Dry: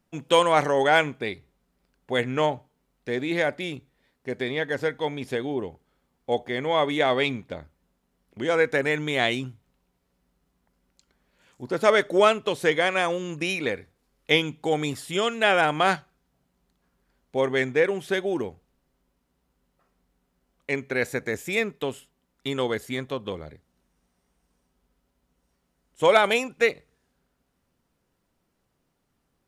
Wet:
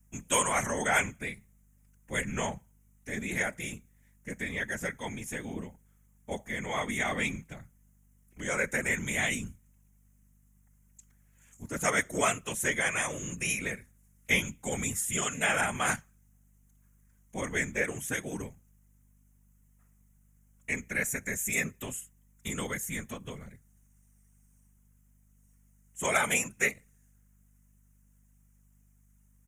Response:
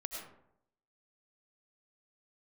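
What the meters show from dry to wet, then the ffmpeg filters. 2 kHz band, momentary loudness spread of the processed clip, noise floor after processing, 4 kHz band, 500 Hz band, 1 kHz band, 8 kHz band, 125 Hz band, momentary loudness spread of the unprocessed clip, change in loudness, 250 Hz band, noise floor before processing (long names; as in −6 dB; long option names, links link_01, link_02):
−3.5 dB, 16 LU, −64 dBFS, −9.5 dB, −13.5 dB, −9.0 dB, +10.0 dB, −4.0 dB, 16 LU, −6.5 dB, −7.5 dB, −74 dBFS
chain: -af "afftfilt=real='hypot(re,im)*cos(2*PI*random(0))':imag='hypot(re,im)*sin(2*PI*random(1))':win_size=512:overlap=0.75,aeval=exprs='val(0)+0.000562*(sin(2*PI*50*n/s)+sin(2*PI*2*50*n/s)/2+sin(2*PI*3*50*n/s)/3+sin(2*PI*4*50*n/s)/4+sin(2*PI*5*50*n/s)/5)':channel_layout=same,firequalizer=gain_entry='entry(220,0);entry(330,-11);entry(2000,2);entry(4400,-13);entry(6400,14)':delay=0.05:min_phase=1,volume=2.5dB"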